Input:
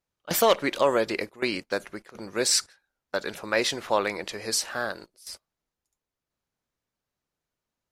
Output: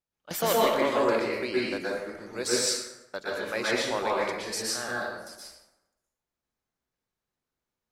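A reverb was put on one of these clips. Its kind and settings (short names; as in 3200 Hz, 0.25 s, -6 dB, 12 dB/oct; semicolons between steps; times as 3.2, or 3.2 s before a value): plate-style reverb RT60 1 s, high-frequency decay 0.6×, pre-delay 0.105 s, DRR -6 dB; gain -8 dB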